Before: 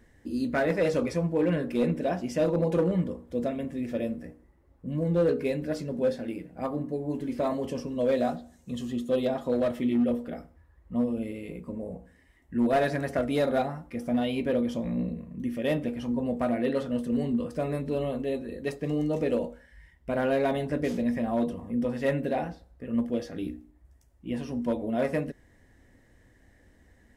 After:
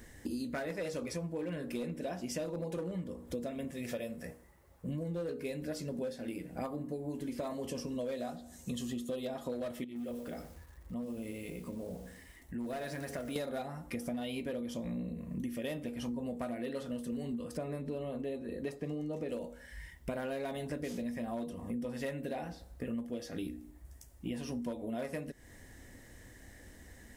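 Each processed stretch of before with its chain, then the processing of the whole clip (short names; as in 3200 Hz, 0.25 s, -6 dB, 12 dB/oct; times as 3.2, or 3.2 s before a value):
3.71–4.89 HPF 130 Hz 6 dB/oct + bell 290 Hz -12 dB 0.63 oct
9.84–13.36 compressor 2:1, threshold -50 dBFS + lo-fi delay 0.119 s, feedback 35%, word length 10-bit, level -13 dB
17.57–19.29 HPF 65 Hz + high shelf 2900 Hz -10 dB
whole clip: high shelf 4200 Hz +12 dB; compressor 10:1, threshold -40 dBFS; gain +4.5 dB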